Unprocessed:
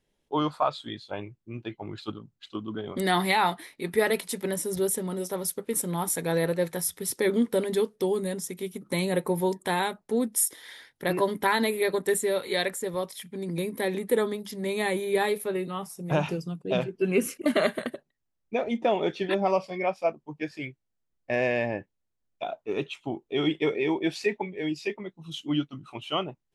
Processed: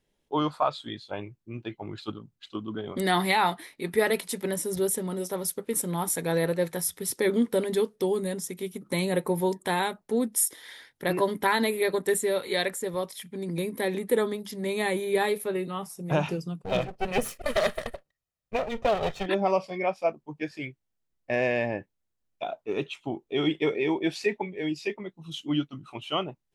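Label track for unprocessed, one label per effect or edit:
16.630000	19.260000	minimum comb delay 1.6 ms

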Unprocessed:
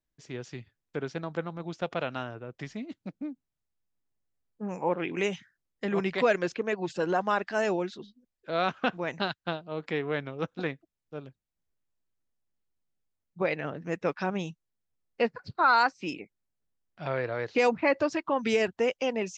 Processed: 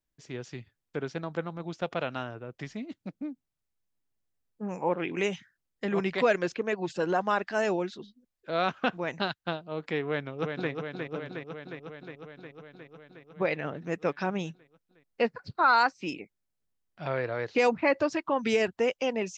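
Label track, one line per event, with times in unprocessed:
10.050000	10.710000	echo throw 0.36 s, feedback 75%, level -5 dB

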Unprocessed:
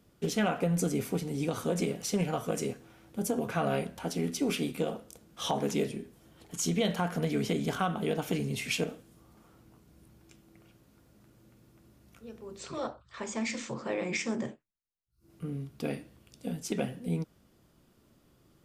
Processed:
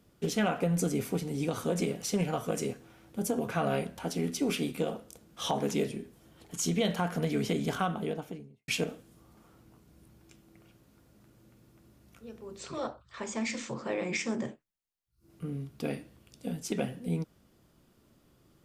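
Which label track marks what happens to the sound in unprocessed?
7.760000	8.680000	studio fade out

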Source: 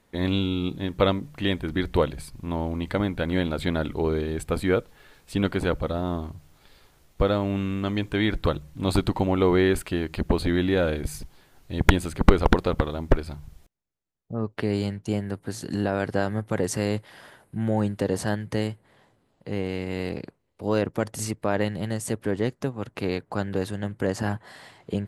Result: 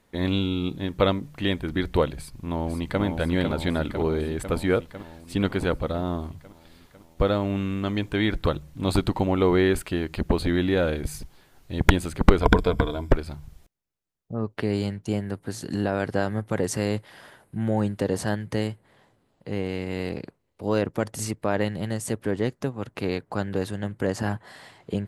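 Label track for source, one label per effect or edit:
2.160000	3.020000	echo throw 0.5 s, feedback 70%, level -5 dB
12.410000	13.120000	ripple EQ crests per octave 1.7, crest to trough 11 dB

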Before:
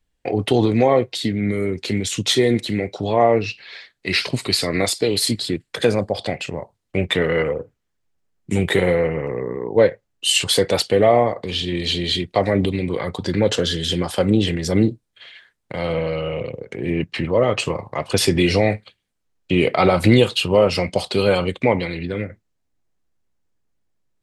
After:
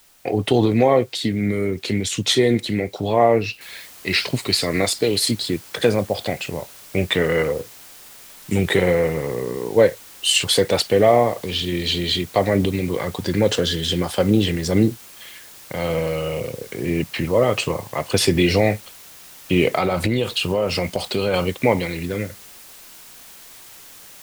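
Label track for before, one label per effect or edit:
3.610000	3.610000	noise floor step -54 dB -43 dB
19.780000	21.340000	compressor 5:1, threshold -16 dBFS

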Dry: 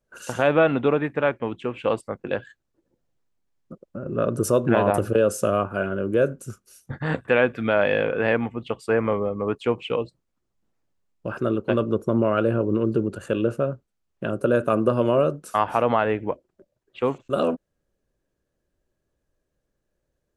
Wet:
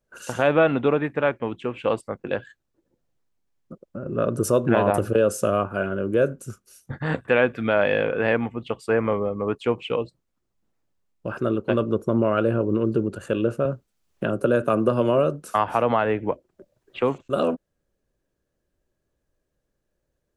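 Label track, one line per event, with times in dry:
13.650000	17.210000	three-band squash depth 40%

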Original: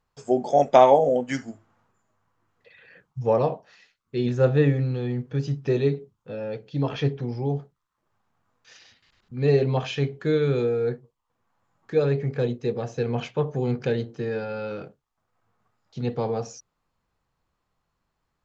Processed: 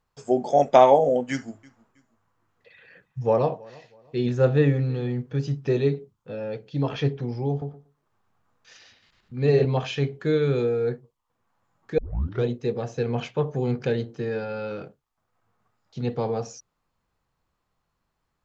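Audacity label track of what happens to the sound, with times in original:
1.310000	5.110000	feedback echo 0.321 s, feedback 33%, level -24 dB
7.500000	9.650000	darkening echo 0.117 s, feedback 16%, level -5 dB
11.980000	11.980000	tape start 0.46 s

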